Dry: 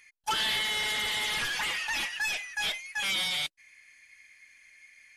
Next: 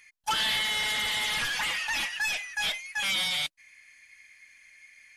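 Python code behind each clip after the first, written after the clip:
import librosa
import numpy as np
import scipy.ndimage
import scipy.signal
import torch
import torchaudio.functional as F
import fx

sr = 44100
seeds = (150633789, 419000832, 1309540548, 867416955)

y = fx.peak_eq(x, sr, hz=390.0, db=-9.5, octaves=0.26)
y = y * librosa.db_to_amplitude(1.5)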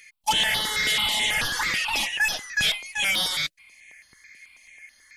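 y = fx.phaser_held(x, sr, hz=9.2, low_hz=250.0, high_hz=7800.0)
y = y * librosa.db_to_amplitude(8.0)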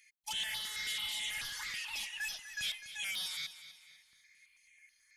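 y = fx.tone_stack(x, sr, knobs='5-5-5')
y = fx.echo_feedback(y, sr, ms=249, feedback_pct=40, wet_db=-13.5)
y = y * librosa.db_to_amplitude(-6.5)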